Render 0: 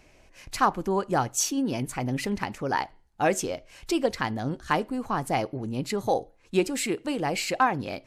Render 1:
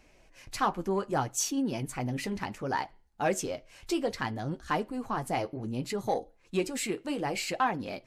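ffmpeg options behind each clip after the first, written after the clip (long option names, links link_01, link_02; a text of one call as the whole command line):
ffmpeg -i in.wav -af "asoftclip=type=tanh:threshold=-12dB,flanger=delay=3.5:depth=8.3:regen=-43:speed=0.64:shape=triangular" out.wav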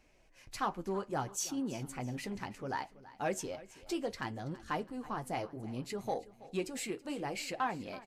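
ffmpeg -i in.wav -af "aecho=1:1:328|656|984|1312:0.119|0.0523|0.023|0.0101,volume=-6.5dB" out.wav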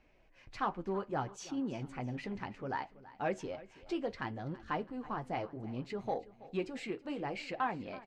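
ffmpeg -i in.wav -af "lowpass=3200" out.wav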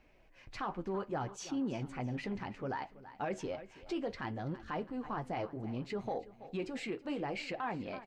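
ffmpeg -i in.wav -af "alimiter=level_in=7dB:limit=-24dB:level=0:latency=1:release=18,volume=-7dB,volume=2dB" out.wav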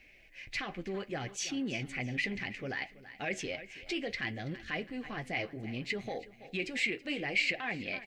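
ffmpeg -i in.wav -af "asuperstop=centerf=920:order=4:qfactor=6.3,highshelf=frequency=1600:width_type=q:width=3:gain=8.5" out.wav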